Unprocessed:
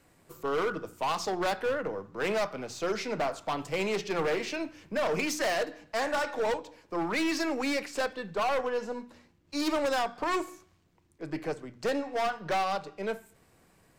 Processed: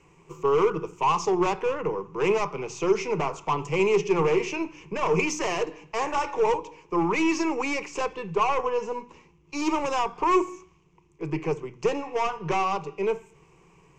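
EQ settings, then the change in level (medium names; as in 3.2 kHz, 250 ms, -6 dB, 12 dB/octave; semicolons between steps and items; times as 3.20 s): rippled EQ curve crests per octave 0.74, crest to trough 15 dB; dynamic bell 2.7 kHz, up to -4 dB, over -40 dBFS, Q 0.95; distance through air 85 m; +4.0 dB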